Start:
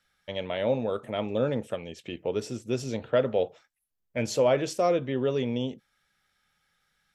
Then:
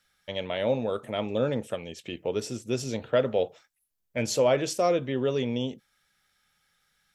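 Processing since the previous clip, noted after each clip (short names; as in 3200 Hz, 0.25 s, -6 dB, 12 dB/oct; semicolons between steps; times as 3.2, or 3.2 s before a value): high shelf 4000 Hz +6 dB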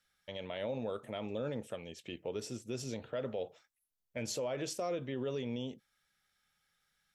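limiter -21 dBFS, peak gain reduction 9 dB; gain -7.5 dB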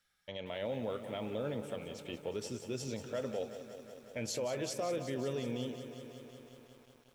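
lo-fi delay 0.183 s, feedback 80%, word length 10-bit, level -11 dB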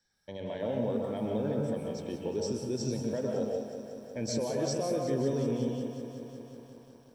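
reverb RT60 0.75 s, pre-delay 0.121 s, DRR 1.5 dB; gain -7 dB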